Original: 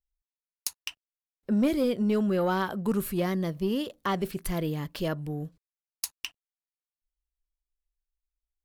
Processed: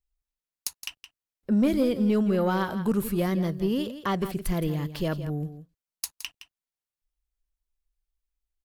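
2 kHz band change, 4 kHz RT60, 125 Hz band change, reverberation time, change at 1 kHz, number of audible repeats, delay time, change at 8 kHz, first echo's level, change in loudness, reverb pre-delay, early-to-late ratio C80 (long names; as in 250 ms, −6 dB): +0.5 dB, no reverb audible, +3.5 dB, no reverb audible, +0.5 dB, 1, 167 ms, +0.5 dB, −12.0 dB, +2.0 dB, no reverb audible, no reverb audible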